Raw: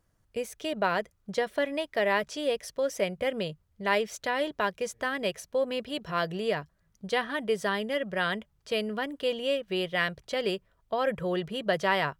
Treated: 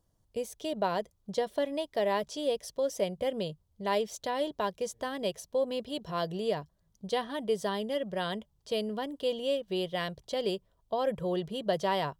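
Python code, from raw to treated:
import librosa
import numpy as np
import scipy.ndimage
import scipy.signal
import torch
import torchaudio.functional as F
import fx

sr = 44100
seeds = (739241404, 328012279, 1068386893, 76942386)

y = fx.band_shelf(x, sr, hz=1800.0, db=-9.5, octaves=1.3)
y = F.gain(torch.from_numpy(y), -1.5).numpy()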